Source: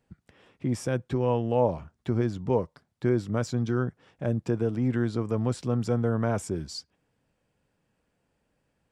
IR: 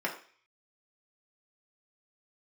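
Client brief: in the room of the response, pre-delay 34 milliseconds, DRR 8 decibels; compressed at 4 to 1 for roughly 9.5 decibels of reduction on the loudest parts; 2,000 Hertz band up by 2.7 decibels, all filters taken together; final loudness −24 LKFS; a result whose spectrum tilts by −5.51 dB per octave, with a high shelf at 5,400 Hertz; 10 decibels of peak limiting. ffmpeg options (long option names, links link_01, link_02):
-filter_complex "[0:a]equalizer=frequency=2000:width_type=o:gain=3.5,highshelf=frequency=5400:gain=3.5,acompressor=threshold=-30dB:ratio=4,alimiter=level_in=5dB:limit=-24dB:level=0:latency=1,volume=-5dB,asplit=2[link_01][link_02];[1:a]atrim=start_sample=2205,adelay=34[link_03];[link_02][link_03]afir=irnorm=-1:irlink=0,volume=-15.5dB[link_04];[link_01][link_04]amix=inputs=2:normalize=0,volume=15.5dB"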